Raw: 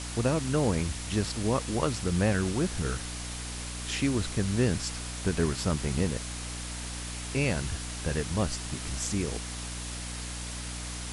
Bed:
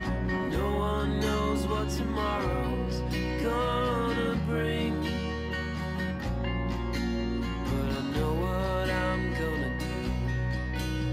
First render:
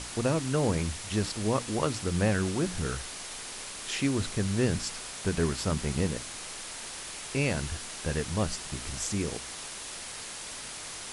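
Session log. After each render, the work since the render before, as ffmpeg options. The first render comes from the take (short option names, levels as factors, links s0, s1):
-af "bandreject=f=60:t=h:w=6,bandreject=f=120:t=h:w=6,bandreject=f=180:t=h:w=6,bandreject=f=240:t=h:w=6,bandreject=f=300:t=h:w=6"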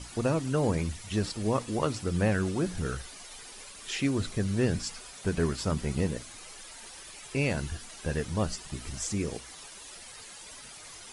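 -af "afftdn=nr=11:nf=-41"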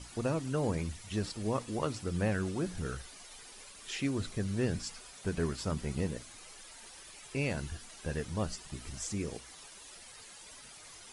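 -af "volume=0.562"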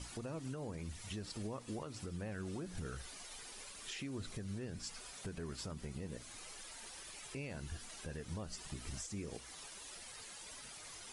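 -af "acompressor=threshold=0.0158:ratio=5,alimiter=level_in=3.16:limit=0.0631:level=0:latency=1:release=205,volume=0.316"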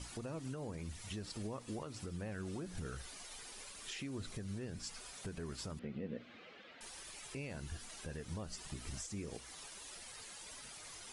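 -filter_complex "[0:a]asettb=1/sr,asplit=3[s0][s1][s2];[s0]atrim=end=5.794[s3];[s1]atrim=start=5.79:end=6.81,asetpts=PTS-STARTPTS,afade=t=in:d=0.004:c=qsin,afade=t=out:st=1.016:d=0.004:c=qsin,highpass=140,equalizer=f=230:t=q:w=4:g=9,equalizer=f=500:t=q:w=4:g=6,equalizer=f=940:t=q:w=4:g=-8,lowpass=f=3200:w=0.5412,lowpass=f=3200:w=1.3066[s4];[s2]atrim=start=6.806[s5];[s3][s4]acrossfade=d=0.004:c1=hsin:c2=qsin[s6];[s6][s5]acrossfade=d=0.004:c1=qsin:c2=hsin"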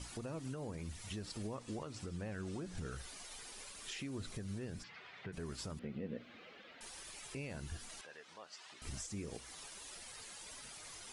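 -filter_complex "[0:a]asettb=1/sr,asplit=3[s0][s1][s2];[s0]atrim=end=1.554[s3];[s1]atrim=start=1.55:end=2.91,asetpts=PTS-STARTPTS,afade=t=in:d=0.004:c=qsin,afade=t=out:st=1.356:d=0.004:c=qsin,lowpass=f=9400:w=0.5412,lowpass=f=9400:w=1.3066[s4];[s2]atrim=start=2.906[s5];[s3][s4]acrossfade=d=0.004:c1=hsin:c2=qsin[s6];[s6][s5]acrossfade=d=0.004:c1=qsin:c2=hsin,asplit=3[s7][s8][s9];[s7]afade=t=out:st=4.82:d=0.02[s10];[s8]highpass=f=100:w=0.5412,highpass=f=100:w=1.3066,equalizer=f=250:t=q:w=4:g=-9,equalizer=f=550:t=q:w=4:g=-4,equalizer=f=2000:t=q:w=4:g=8,lowpass=f=3400:w=0.5412,lowpass=f=3400:w=1.3066,afade=t=in:st=4.82:d=0.02,afade=t=out:st=5.32:d=0.02[s11];[s9]afade=t=in:st=5.32:d=0.02[s12];[s10][s11][s12]amix=inputs=3:normalize=0,asettb=1/sr,asplit=3[s13][s14][s15];[s13]atrim=end=8.014[s16];[s14]atrim=start=8.01:end=8.82,asetpts=PTS-STARTPTS,afade=t=in:d=0.004:c=qsin,afade=t=out:st=0.806:d=0.004:c=qsin,highpass=730,lowpass=4500[s17];[s15]atrim=start=8.816[s18];[s16][s17]acrossfade=d=0.004:c1=hsin:c2=qsin[s19];[s19][s18]acrossfade=d=0.004:c1=qsin:c2=hsin"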